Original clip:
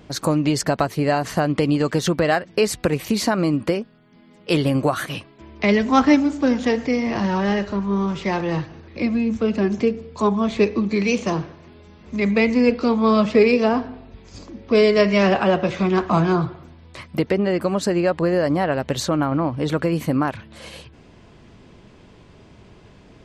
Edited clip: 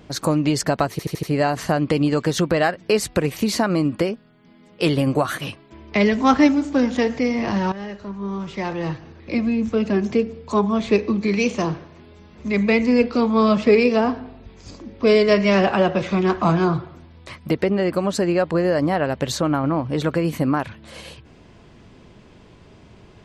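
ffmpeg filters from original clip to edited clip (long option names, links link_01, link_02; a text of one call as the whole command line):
ffmpeg -i in.wav -filter_complex "[0:a]asplit=6[link_01][link_02][link_03][link_04][link_05][link_06];[link_01]atrim=end=0.992[link_07];[link_02]atrim=start=0.908:end=0.992[link_08];[link_03]atrim=start=0.908:end=0.992[link_09];[link_04]atrim=start=0.908:end=0.992[link_10];[link_05]atrim=start=0.908:end=7.4,asetpts=PTS-STARTPTS,afade=type=out:start_time=6.488:duration=0.004:curve=hsin:silence=0.211349[link_11];[link_06]atrim=start=7.4,asetpts=PTS-STARTPTS,afade=type=in:duration=1.65:silence=0.211349[link_12];[link_07][link_08]acrossfade=duration=0.004:curve1=hsin:curve2=hsin[link_13];[link_13][link_09]acrossfade=duration=0.004:curve1=hsin:curve2=hsin[link_14];[link_14][link_10]acrossfade=duration=0.004:curve1=hsin:curve2=hsin[link_15];[link_11][link_12]concat=n=2:v=0:a=1[link_16];[link_15][link_16]acrossfade=duration=0.004:curve1=hsin:curve2=hsin" out.wav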